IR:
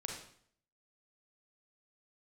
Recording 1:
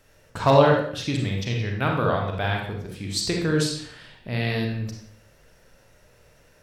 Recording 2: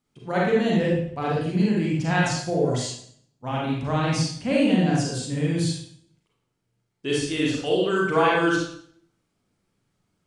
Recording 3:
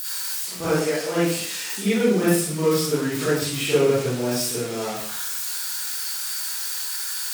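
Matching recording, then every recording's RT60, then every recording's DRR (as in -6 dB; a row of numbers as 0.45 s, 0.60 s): 1; 0.60 s, 0.60 s, 0.60 s; 0.0 dB, -4.5 dB, -11.5 dB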